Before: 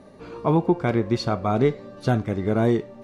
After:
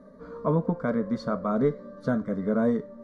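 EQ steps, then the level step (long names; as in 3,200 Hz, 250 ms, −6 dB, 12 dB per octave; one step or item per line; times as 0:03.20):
high-shelf EQ 2,700 Hz −9.5 dB
high-shelf EQ 6,200 Hz −8 dB
phaser with its sweep stopped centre 530 Hz, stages 8
0.0 dB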